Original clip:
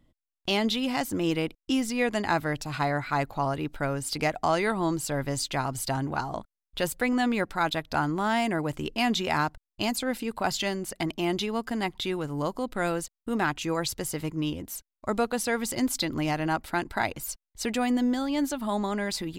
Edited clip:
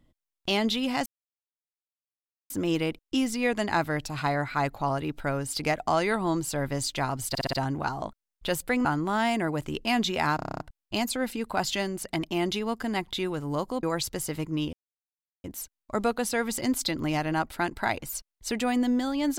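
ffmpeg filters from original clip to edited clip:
-filter_complex "[0:a]asplit=17[a][b][c][d][e][f][g][h][i][j][k][l][m][n][o][p][q];[a]atrim=end=1.06,asetpts=PTS-STARTPTS,afade=t=out:st=1.056:d=0.004:c=hsin,apad=pad_dur=1.44[r];[b]atrim=start=1.06:end=5.912,asetpts=PTS-STARTPTS,afade=t=in:d=0.004:c=hsin[s];[c]atrim=start=5.848:end=5.912[t];[d]atrim=start=5.848:end=5.912[u];[e]atrim=start=5.848:end=5.912[v];[f]atrim=start=5.848:end=7.172[w];[g]atrim=start=7.958:end=9.502[x];[h]atrim=start=9.468:end=9.502[y];[i]atrim=start=9.468:end=9.502[z];[j]atrim=start=9.468:end=9.502[aa];[k]atrim=start=9.468:end=9.502[ab];[l]atrim=start=9.468:end=9.502[ac];[m]atrim=start=9.468:end=9.502[ad];[n]atrim=start=9.468:end=9.502[ae];[o]atrim=start=9.468:end=12.702[af];[p]atrim=start=13.678:end=14.58,asetpts=PTS-STARTPTS,afade=t=out:st=0.898:d=0.004:c=hsin,apad=pad_dur=0.71[ag];[q]atrim=start=14.58,asetpts=PTS-STARTPTS,afade=t=in:d=0.004:c=hsin[ah];[r][s]concat=n=2:v=0:a=1[ai];[ai][t]acrossfade=d=0.004:c1=hsin:c2=hsin[aj];[aj][u]acrossfade=d=0.004:c1=hsin:c2=hsin[ak];[ak][v]acrossfade=d=0.004:c1=hsin:c2=hsin[al];[al][w]acrossfade=d=0.004:c1=hsin:c2=hsin[am];[am][x]acrossfade=d=0.004:c1=hsin:c2=hsin[an];[an][y]acrossfade=d=0.004:c1=hsin:c2=hsin[ao];[ao][z]acrossfade=d=0.004:c1=hsin:c2=hsin[ap];[ap][aa]acrossfade=d=0.004:c1=hsin:c2=hsin[aq];[aq][ab]acrossfade=d=0.004:c1=hsin:c2=hsin[ar];[ar][ac]acrossfade=d=0.004:c1=hsin:c2=hsin[as];[as][ad]acrossfade=d=0.004:c1=hsin:c2=hsin[at];[at][ae]acrossfade=d=0.004:c1=hsin:c2=hsin[au];[au][af]acrossfade=d=0.004:c1=hsin:c2=hsin[av];[ag][ah]concat=n=2:v=0:a=1[aw];[av][aw]acrossfade=d=0.004:c1=hsin:c2=hsin"

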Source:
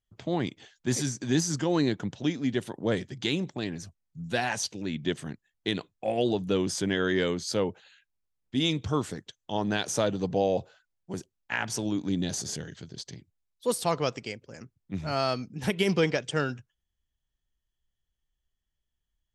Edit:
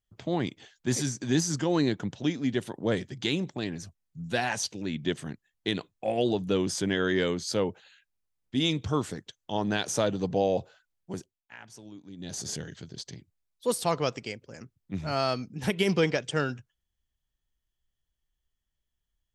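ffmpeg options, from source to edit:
-filter_complex "[0:a]asplit=3[a][b][c];[a]atrim=end=11.43,asetpts=PTS-STARTPTS,afade=t=out:st=11.11:d=0.32:silence=0.141254[d];[b]atrim=start=11.43:end=12.17,asetpts=PTS-STARTPTS,volume=-17dB[e];[c]atrim=start=12.17,asetpts=PTS-STARTPTS,afade=t=in:d=0.32:silence=0.141254[f];[d][e][f]concat=n=3:v=0:a=1"

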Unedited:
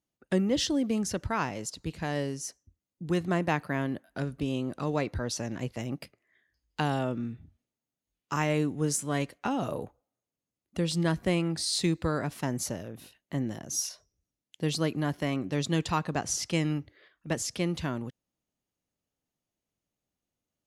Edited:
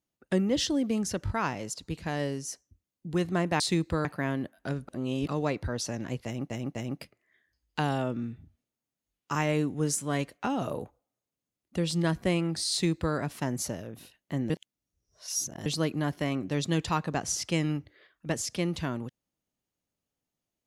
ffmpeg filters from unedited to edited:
-filter_complex "[0:a]asplit=11[a][b][c][d][e][f][g][h][i][j][k];[a]atrim=end=1.272[l];[b]atrim=start=1.248:end=1.272[m];[c]atrim=start=1.248:end=3.562[n];[d]atrim=start=11.718:end=12.172[o];[e]atrim=start=3.558:end=4.392[p];[f]atrim=start=4.388:end=4.792,asetpts=PTS-STARTPTS,areverse[q];[g]atrim=start=4.788:end=6.012[r];[h]atrim=start=5.758:end=6.012[s];[i]atrim=start=5.758:end=13.512[t];[j]atrim=start=13.508:end=14.672,asetpts=PTS-STARTPTS,areverse[u];[k]atrim=start=14.668[v];[l][m]acrossfade=d=0.004:c1=hsin:c2=hsin[w];[w][n]acrossfade=d=0.004:c1=hsin:c2=hsin[x];[x][o]acrossfade=d=0.004:c1=hsin:c2=hsin[y];[y][p]acrossfade=d=0.004:c1=hsin:c2=hsin[z];[z][q]acrossfade=d=0.004:c1=hsin:c2=hsin[aa];[aa][r]acrossfade=d=0.004:c1=hsin:c2=hsin[ab];[ab][s]acrossfade=d=0.004:c1=hsin:c2=hsin[ac];[ac][t]acrossfade=d=0.004:c1=hsin:c2=hsin[ad];[ad][u]acrossfade=d=0.004:c1=hsin:c2=hsin[ae];[ae][v]acrossfade=d=0.004:c1=hsin:c2=hsin"

